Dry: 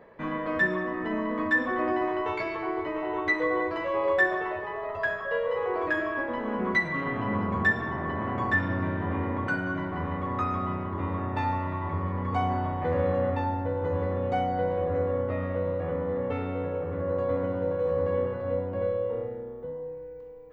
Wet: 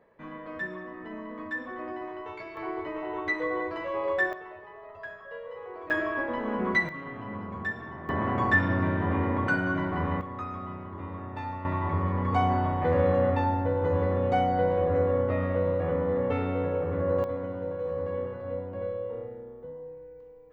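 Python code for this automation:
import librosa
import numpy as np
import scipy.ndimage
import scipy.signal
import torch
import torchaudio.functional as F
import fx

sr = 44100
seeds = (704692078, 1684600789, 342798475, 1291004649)

y = fx.gain(x, sr, db=fx.steps((0.0, -10.0), (2.57, -3.5), (4.33, -12.5), (5.9, 0.0), (6.89, -9.0), (8.09, 2.5), (10.21, -7.5), (11.65, 2.5), (17.24, -5.0)))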